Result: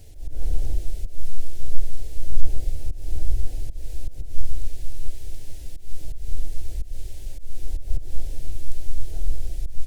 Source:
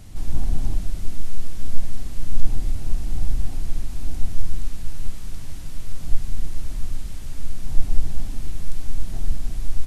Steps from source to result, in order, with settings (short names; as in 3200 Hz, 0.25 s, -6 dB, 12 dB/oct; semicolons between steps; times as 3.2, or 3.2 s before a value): auto swell 0.177 s; harmoniser +12 st -6 dB; fixed phaser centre 480 Hz, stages 4; gain -2.5 dB